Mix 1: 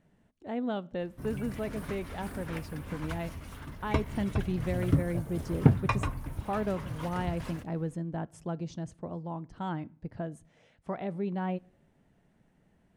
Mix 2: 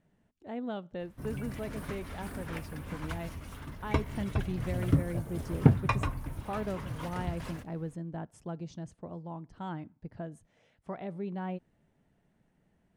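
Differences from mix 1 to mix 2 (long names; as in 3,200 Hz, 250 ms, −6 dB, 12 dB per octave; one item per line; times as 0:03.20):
speech −3.5 dB
reverb: off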